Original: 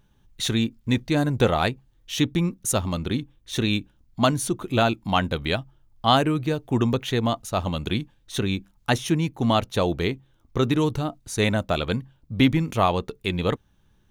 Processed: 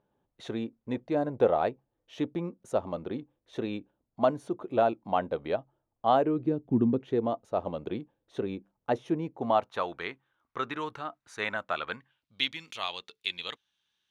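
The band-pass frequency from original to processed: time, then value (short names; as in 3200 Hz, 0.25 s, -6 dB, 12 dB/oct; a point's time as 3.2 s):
band-pass, Q 1.6
6.19 s 570 Hz
6.7 s 210 Hz
7.35 s 510 Hz
9.34 s 510 Hz
9.88 s 1400 Hz
11.92 s 1400 Hz
12.34 s 3600 Hz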